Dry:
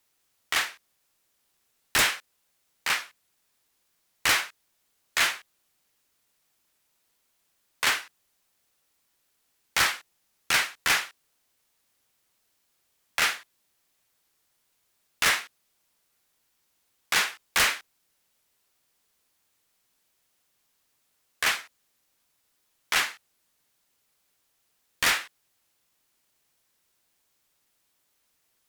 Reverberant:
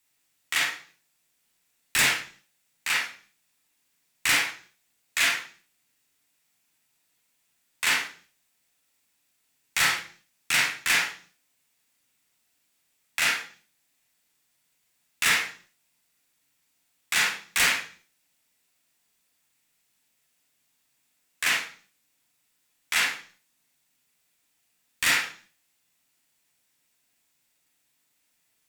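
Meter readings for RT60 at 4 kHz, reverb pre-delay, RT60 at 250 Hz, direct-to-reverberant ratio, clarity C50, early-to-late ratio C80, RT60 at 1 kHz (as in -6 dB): 0.50 s, 34 ms, 0.60 s, -1.0 dB, 5.0 dB, 12.0 dB, 0.40 s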